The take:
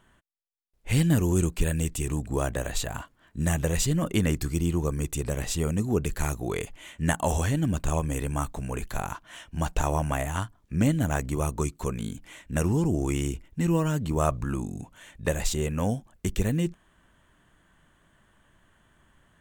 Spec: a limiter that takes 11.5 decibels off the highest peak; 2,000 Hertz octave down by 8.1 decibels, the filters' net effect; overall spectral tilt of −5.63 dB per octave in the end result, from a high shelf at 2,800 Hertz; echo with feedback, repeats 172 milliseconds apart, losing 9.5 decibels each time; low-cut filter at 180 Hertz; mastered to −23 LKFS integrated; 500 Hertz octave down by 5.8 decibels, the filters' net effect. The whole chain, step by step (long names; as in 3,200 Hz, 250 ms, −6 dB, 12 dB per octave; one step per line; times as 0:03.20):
high-pass filter 180 Hz
parametric band 500 Hz −7 dB
parametric band 2,000 Hz −7 dB
high-shelf EQ 2,800 Hz −8 dB
brickwall limiter −24.5 dBFS
repeating echo 172 ms, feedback 33%, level −9.5 dB
level +13 dB